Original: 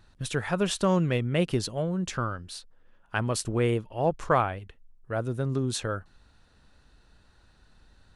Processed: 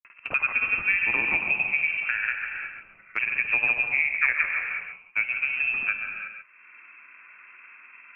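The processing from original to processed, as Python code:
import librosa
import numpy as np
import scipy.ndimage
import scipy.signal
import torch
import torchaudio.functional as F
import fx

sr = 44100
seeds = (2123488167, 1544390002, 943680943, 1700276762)

p1 = fx.wiener(x, sr, points=15)
p2 = scipy.signal.sosfilt(scipy.signal.butter(4, 250.0, 'highpass', fs=sr, output='sos'), p1)
p3 = fx.peak_eq(p2, sr, hz=530.0, db=3.5, octaves=1.2)
p4 = np.where(np.abs(p3) >= 10.0 ** (-34.5 / 20.0), p3, 0.0)
p5 = p3 + F.gain(torch.from_numpy(p4), -5.0).numpy()
p6 = fx.granulator(p5, sr, seeds[0], grain_ms=100.0, per_s=20.0, spray_ms=100.0, spread_st=0)
p7 = p6 + 10.0 ** (-9.5 / 20.0) * np.pad(p6, (int(136 * sr / 1000.0), 0))[:len(p6)]
p8 = fx.rev_gated(p7, sr, seeds[1], gate_ms=380, shape='flat', drr_db=5.5)
p9 = fx.freq_invert(p8, sr, carrier_hz=2900)
p10 = fx.band_squash(p9, sr, depth_pct=70)
y = F.gain(torch.from_numpy(p10), -2.0).numpy()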